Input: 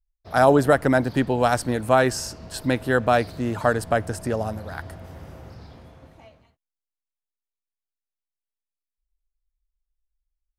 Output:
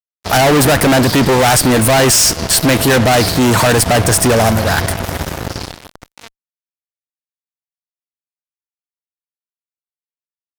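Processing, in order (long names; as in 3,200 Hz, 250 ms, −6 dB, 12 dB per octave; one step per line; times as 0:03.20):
high-shelf EQ 2,400 Hz +10.5 dB
fuzz pedal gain 35 dB, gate −40 dBFS
pitch shifter +0.5 semitones
level +4.5 dB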